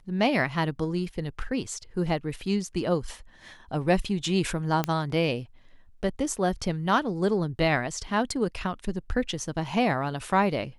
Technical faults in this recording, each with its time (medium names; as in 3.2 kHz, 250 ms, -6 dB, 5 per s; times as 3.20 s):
4.84 s: pop -11 dBFS